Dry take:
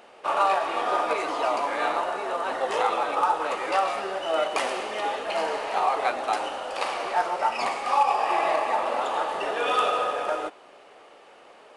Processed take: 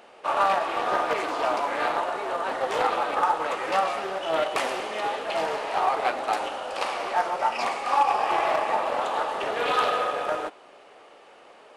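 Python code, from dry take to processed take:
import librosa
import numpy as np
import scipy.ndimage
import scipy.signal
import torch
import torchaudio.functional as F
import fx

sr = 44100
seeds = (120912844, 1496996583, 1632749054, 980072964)

y = fx.doppler_dist(x, sr, depth_ms=0.19)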